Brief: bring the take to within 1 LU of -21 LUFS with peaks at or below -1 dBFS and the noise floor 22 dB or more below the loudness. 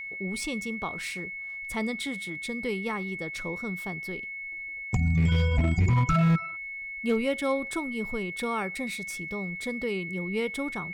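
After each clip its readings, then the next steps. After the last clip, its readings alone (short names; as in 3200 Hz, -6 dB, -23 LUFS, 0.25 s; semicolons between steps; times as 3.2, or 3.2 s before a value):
clipped 0.7%; flat tops at -17.5 dBFS; steady tone 2200 Hz; tone level -35 dBFS; loudness -29.5 LUFS; peak -17.5 dBFS; loudness target -21.0 LUFS
-> clip repair -17.5 dBFS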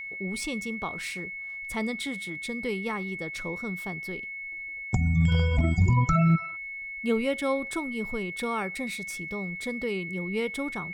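clipped 0.0%; steady tone 2200 Hz; tone level -35 dBFS
-> notch 2200 Hz, Q 30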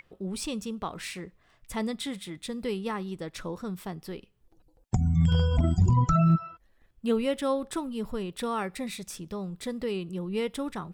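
steady tone none; loudness -29.5 LUFS; peak -12.0 dBFS; loudness target -21.0 LUFS
-> gain +8.5 dB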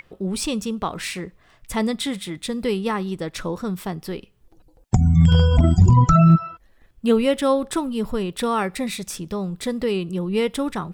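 loudness -21.0 LUFS; peak -3.5 dBFS; noise floor -57 dBFS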